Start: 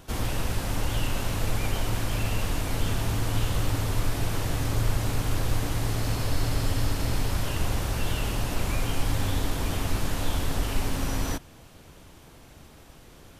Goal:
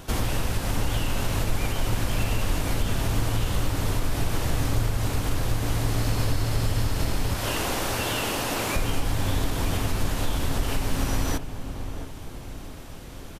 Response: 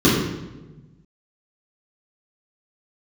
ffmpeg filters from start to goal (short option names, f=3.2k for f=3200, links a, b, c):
-filter_complex "[0:a]asettb=1/sr,asplit=3[a][b][c];[a]atrim=end=7.344[d];[b]atrim=start=7.34:end=8.76,asetpts=PTS-STARTPTS,afade=t=in:d=0.004:c=qsin,afade=t=out:st=1.416:d=0.004:c=qsin,highpass=280[e];[c]atrim=start=8.756[f];[d][e]acrossfade=d=0.004:c1=hsin:c2=qsin[g];[g][f]acrossfade=d=0.004:c1=qsin:c2=hsin,acompressor=threshold=-29dB:ratio=3,asplit=2[h][i];[i]adelay=673,lowpass=f=920:p=1,volume=-9dB,asplit=2[j][k];[k]adelay=673,lowpass=f=920:p=1,volume=0.53,asplit=2[l][m];[m]adelay=673,lowpass=f=920:p=1,volume=0.53,asplit=2[n][o];[o]adelay=673,lowpass=f=920:p=1,volume=0.53,asplit=2[p][q];[q]adelay=673,lowpass=f=920:p=1,volume=0.53,asplit=2[r][s];[s]adelay=673,lowpass=f=920:p=1,volume=0.53[t];[h][j][l][n][p][r][t]amix=inputs=7:normalize=0,volume=7dB"